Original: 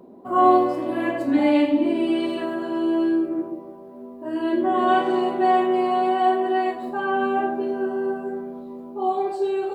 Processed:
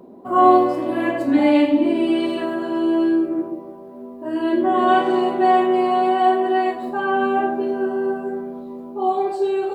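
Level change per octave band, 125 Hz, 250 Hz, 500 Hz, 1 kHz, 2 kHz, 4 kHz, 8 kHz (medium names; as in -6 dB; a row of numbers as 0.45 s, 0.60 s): +3.0 dB, +3.0 dB, +3.0 dB, +3.0 dB, +3.0 dB, +3.0 dB, no reading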